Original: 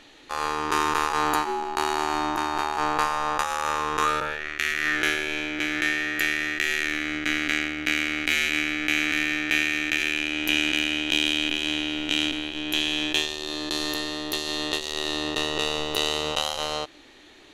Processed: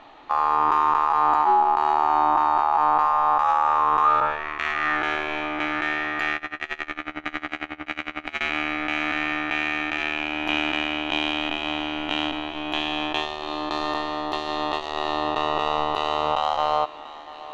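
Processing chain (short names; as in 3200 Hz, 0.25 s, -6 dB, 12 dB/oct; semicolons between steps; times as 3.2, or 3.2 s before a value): LPF 2900 Hz 12 dB/oct; band shelf 900 Hz +12.5 dB 1.2 oct; limiter -10 dBFS, peak gain reduction 10 dB; thinning echo 0.689 s, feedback 66%, high-pass 420 Hz, level -17 dB; 6.36–8.41 dB-linear tremolo 11 Hz, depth 23 dB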